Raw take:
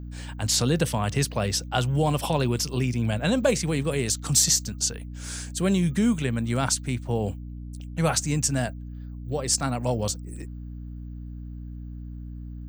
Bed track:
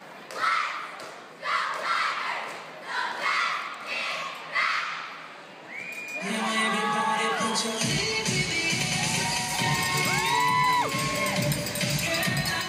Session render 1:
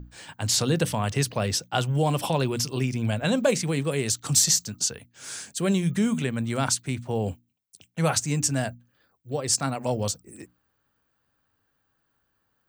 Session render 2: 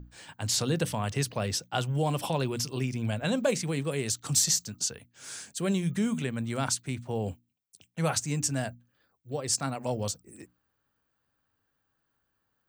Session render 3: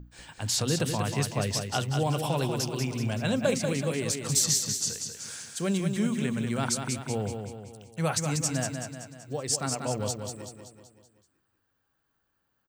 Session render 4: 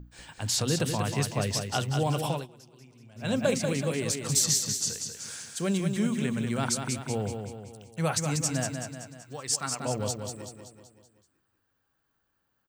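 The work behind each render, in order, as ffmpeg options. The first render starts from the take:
-af "bandreject=f=60:t=h:w=6,bandreject=f=120:t=h:w=6,bandreject=f=180:t=h:w=6,bandreject=f=240:t=h:w=6,bandreject=f=300:t=h:w=6"
-af "volume=0.596"
-af "aecho=1:1:190|380|570|760|950|1140:0.501|0.256|0.13|0.0665|0.0339|0.0173"
-filter_complex "[0:a]asettb=1/sr,asplit=3[s0][s1][s2];[s0]atrim=end=9.224[s3];[s1]atrim=start=9.22:end=9.8,asetpts=PTS-STARTPTS,afade=t=in:d=0.004:c=qsin,afade=t=out:st=0.576:d=0.004:c=qsin,lowshelf=f=790:t=q:w=1.5:g=-6.5[s4];[s2]atrim=start=9.796[s5];[s3][s4]acrossfade=d=0.004:c1=hsin:c2=qsin[s6];[s6][s5]acrossfade=d=0.004:c1=qsin:c2=hsin,asplit=3[s7][s8][s9];[s7]atrim=end=2.47,asetpts=PTS-STARTPTS,afade=t=out:st=2.29:d=0.18:silence=0.0707946[s10];[s8]atrim=start=2.47:end=3.15,asetpts=PTS-STARTPTS,volume=0.0708[s11];[s9]atrim=start=3.15,asetpts=PTS-STARTPTS,afade=t=in:d=0.18:silence=0.0707946[s12];[s10][s11][s12]concat=n=3:v=0:a=1"

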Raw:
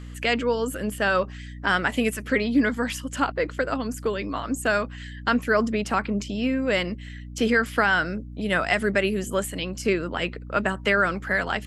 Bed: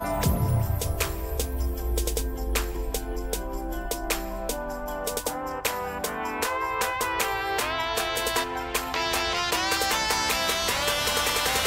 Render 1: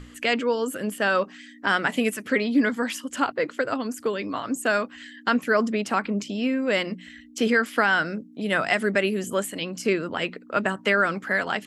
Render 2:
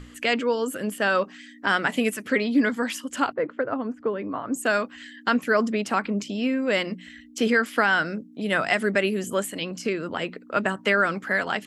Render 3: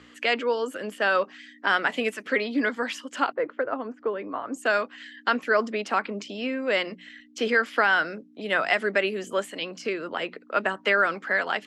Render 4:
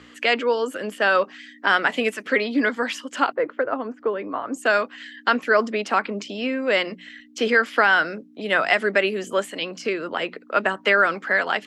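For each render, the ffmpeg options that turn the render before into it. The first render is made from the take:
-af "bandreject=f=60:t=h:w=6,bandreject=f=120:t=h:w=6,bandreject=f=180:t=h:w=6"
-filter_complex "[0:a]asettb=1/sr,asplit=3[s0][s1][s2];[s0]atrim=end=3.334[s3];[s1]atrim=start=3.33:end=4.53,asetpts=PTS-STARTPTS,afade=t=in:d=0.004:c=qsin,afade=t=out:st=1.196:d=0.004:c=qsin,lowpass=1400[s4];[s2]atrim=start=4.526[s5];[s3][s4]acrossfade=d=0.004:c1=hsin:c2=qsin[s6];[s6][s5]acrossfade=d=0.004:c1=qsin:c2=hsin,asettb=1/sr,asplit=3[s7][s8][s9];[s7]atrim=end=9.714[s10];[s8]atrim=start=9.71:end=10.5,asetpts=PTS-STARTPTS,afade=t=in:d=0.004:c=qsin,afade=t=out:st=0.786:d=0.004:c=qsin,acrossover=split=1200|7300[s11][s12][s13];[s11]acompressor=threshold=0.0708:ratio=4[s14];[s12]acompressor=threshold=0.0282:ratio=4[s15];[s13]acompressor=threshold=0.00282:ratio=4[s16];[s14][s15][s16]amix=inputs=3:normalize=0[s17];[s9]atrim=start=10.496[s18];[s10][s17]acrossfade=d=0.004:c1=hsin:c2=qsin[s19];[s19][s18]acrossfade=d=0.004:c1=qsin:c2=hsin"
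-filter_complex "[0:a]highpass=86,acrossover=split=310 6100:gain=0.224 1 0.158[s0][s1][s2];[s0][s1][s2]amix=inputs=3:normalize=0"
-af "volume=1.58"

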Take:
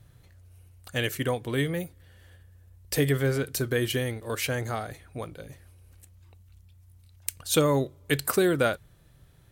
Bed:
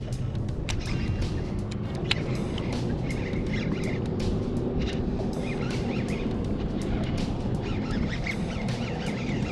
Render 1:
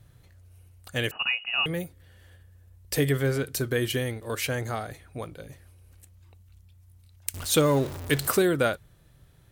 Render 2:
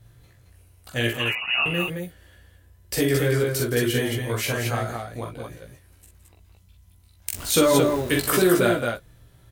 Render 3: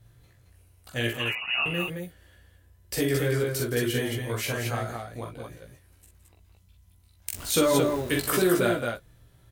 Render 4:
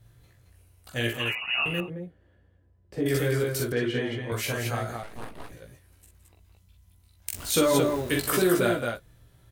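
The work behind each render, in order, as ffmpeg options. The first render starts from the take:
-filter_complex "[0:a]asettb=1/sr,asplit=3[s0][s1][s2];[s0]atrim=end=1.114[s3];[s1]atrim=start=1.11:end=1.66,asetpts=PTS-STARTPTS,afade=t=in:d=0.004:c=qsin,afade=t=out:st=0.546:d=0.004:c=qsin,lowpass=f=2600:t=q:w=0.5098,lowpass=f=2600:t=q:w=0.6013,lowpass=f=2600:t=q:w=0.9,lowpass=f=2600:t=q:w=2.563,afreqshift=-3000[s4];[s2]atrim=start=1.656[s5];[s3][s4]acrossfade=d=0.004:c1=hsin:c2=qsin[s6];[s6][s5]acrossfade=d=0.004:c1=qsin:c2=hsin,asettb=1/sr,asplit=3[s7][s8][s9];[s7]atrim=end=7.344[s10];[s8]atrim=start=7.34:end=8.42,asetpts=PTS-STARTPTS,afade=t=in:d=0.004:c=qsin,afade=t=out:st=1.076:d=0.004:c=qsin,aeval=exprs='val(0)+0.5*0.0251*sgn(val(0))':c=same[s11];[s9]atrim=start=8.416[s12];[s10][s11]acrossfade=d=0.004:c1=hsin:c2=qsin[s13];[s13][s12]acrossfade=d=0.004:c1=qsin:c2=hsin"
-filter_complex "[0:a]asplit=2[s0][s1];[s1]adelay=17,volume=0.708[s2];[s0][s2]amix=inputs=2:normalize=0,aecho=1:1:43|46|166|220:0.473|0.473|0.211|0.631"
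-af "volume=0.631"
-filter_complex "[0:a]asettb=1/sr,asplit=3[s0][s1][s2];[s0]atrim=end=1.804[s3];[s1]atrim=start=1.8:end=3.06,asetpts=PTS-STARTPTS,afade=t=in:d=0.004:c=qsin,afade=t=out:st=1.256:d=0.004:c=qsin,bandpass=f=250:t=q:w=0.52[s4];[s2]atrim=start=3.056[s5];[s3][s4]acrossfade=d=0.004:c1=hsin:c2=qsin[s6];[s6][s5]acrossfade=d=0.004:c1=qsin:c2=hsin,asettb=1/sr,asplit=3[s7][s8][s9];[s7]atrim=end=3.724[s10];[s8]atrim=start=3.72:end=4.32,asetpts=PTS-STARTPTS,afade=t=in:d=0.004:c=qsin,afade=t=out:st=0.596:d=0.004:c=qsin,highpass=120,lowpass=3200[s11];[s9]atrim=start=4.316[s12];[s10][s11]acrossfade=d=0.004:c1=hsin:c2=qsin[s13];[s13][s12]acrossfade=d=0.004:c1=qsin:c2=hsin,asettb=1/sr,asplit=3[s14][s15][s16];[s14]atrim=end=5.034[s17];[s15]atrim=start=5.03:end=5.52,asetpts=PTS-STARTPTS,afade=t=in:d=0.004:c=qsin,afade=t=out:st=0.486:d=0.004:c=qsin,aeval=exprs='abs(val(0))':c=same[s18];[s16]atrim=start=5.516[s19];[s17][s18]acrossfade=d=0.004:c1=hsin:c2=qsin[s20];[s20][s19]acrossfade=d=0.004:c1=qsin:c2=hsin"

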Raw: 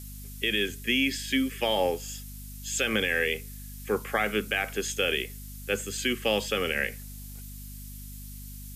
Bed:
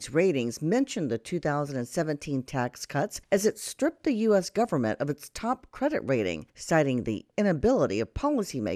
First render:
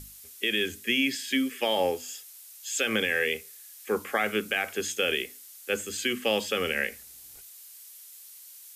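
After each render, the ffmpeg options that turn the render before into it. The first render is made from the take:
-af "bandreject=f=50:t=h:w=6,bandreject=f=100:t=h:w=6,bandreject=f=150:t=h:w=6,bandreject=f=200:t=h:w=6,bandreject=f=250:t=h:w=6,bandreject=f=300:t=h:w=6"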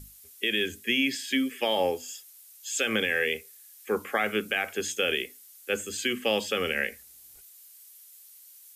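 -af "afftdn=nr=6:nf=-49"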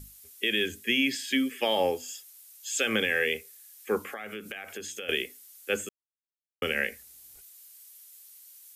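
-filter_complex "[0:a]asettb=1/sr,asplit=3[s0][s1][s2];[s0]atrim=end=4.064[s3];[s1]atrim=start=4.06:end=5.09,asetpts=PTS-STARTPTS,afade=t=in:d=0.004:c=qsin,afade=t=out:st=1.026:d=0.004:c=qsin,acompressor=threshold=0.0178:ratio=6:attack=3.2:release=140:knee=1:detection=peak[s4];[s2]atrim=start=5.086[s5];[s3][s4]acrossfade=d=0.004:c1=hsin:c2=qsin[s6];[s6][s5]acrossfade=d=0.004:c1=qsin:c2=hsin,asplit=3[s7][s8][s9];[s7]atrim=end=5.89,asetpts=PTS-STARTPTS,afade=t=out:st=5.886:d=0.004:c=hsin[s10];[s8]atrim=start=5.89:end=6.62,asetpts=PTS-STARTPTS,volume=0[s11];[s9]atrim=start=6.62,asetpts=PTS-STARTPTS,afade=t=in:d=0.004:c=hsin[s12];[s10][s11][s12]concat=n=3:v=0:a=1"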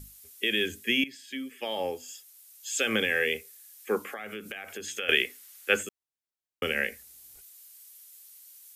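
-filter_complex "[0:a]asettb=1/sr,asplit=3[s0][s1][s2];[s0]atrim=end=3.734[s3];[s1]atrim=start=3.73:end=4.19,asetpts=PTS-STARTPTS,afade=t=in:d=0.004:c=qsin,afade=t=out:st=0.456:d=0.004:c=qsin,highpass=150[s4];[s2]atrim=start=4.186[s5];[s3][s4]acrossfade=d=0.004:c1=hsin:c2=qsin[s6];[s6][s5]acrossfade=d=0.004:c1=qsin:c2=hsin,asettb=1/sr,asplit=3[s7][s8][s9];[s7]atrim=end=4.874[s10];[s8]atrim=start=4.87:end=5.83,asetpts=PTS-STARTPTS,afade=t=in:d=0.004:c=qsin,afade=t=out:st=0.956:d=0.004:c=qsin,equalizer=f=1700:t=o:w=2.3:g=8[s11];[s9]atrim=start=5.826[s12];[s10][s11]acrossfade=d=0.004:c1=hsin:c2=qsin[s13];[s13][s12]acrossfade=d=0.004:c1=qsin:c2=hsin,asplit=2[s14][s15];[s14]atrim=end=1.04,asetpts=PTS-STARTPTS,afade=t=out:st=1.036:d=0.004:c=hsin:silence=0.149624[s16];[s15]atrim=start=1.04,asetpts=PTS-STARTPTS,afade=t=in:d=1.81:silence=0.149624[s17];[s16][s17]concat=n=2:v=0:a=1"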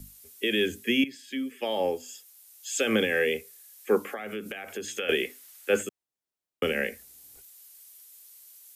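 -filter_complex "[0:a]acrossover=split=130|790|5100[s0][s1][s2][s3];[s1]acontrast=38[s4];[s2]alimiter=limit=0.119:level=0:latency=1:release=19[s5];[s0][s4][s5][s3]amix=inputs=4:normalize=0"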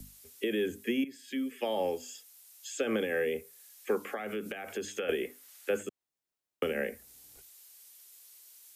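-filter_complex "[0:a]acrossover=split=210|1500|7800[s0][s1][s2][s3];[s0]acompressor=threshold=0.00398:ratio=4[s4];[s1]acompressor=threshold=0.0398:ratio=4[s5];[s2]acompressor=threshold=0.00631:ratio=4[s6];[s3]acompressor=threshold=0.00178:ratio=4[s7];[s4][s5][s6][s7]amix=inputs=4:normalize=0"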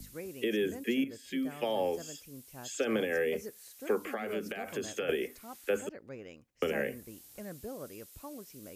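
-filter_complex "[1:a]volume=0.106[s0];[0:a][s0]amix=inputs=2:normalize=0"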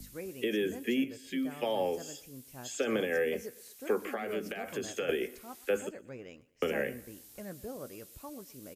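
-filter_complex "[0:a]asplit=2[s0][s1];[s1]adelay=16,volume=0.211[s2];[s0][s2]amix=inputs=2:normalize=0,aecho=1:1:122|244|366:0.0891|0.0365|0.015"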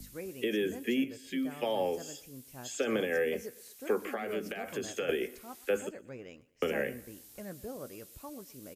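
-af anull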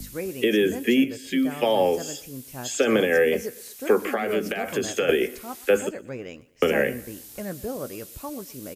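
-af "volume=3.35"

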